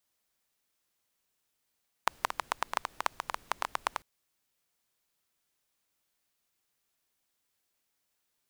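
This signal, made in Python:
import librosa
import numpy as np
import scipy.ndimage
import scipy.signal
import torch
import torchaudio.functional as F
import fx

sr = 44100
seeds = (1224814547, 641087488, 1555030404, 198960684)

y = fx.rain(sr, seeds[0], length_s=1.95, drops_per_s=10.0, hz=1000.0, bed_db=-22.5)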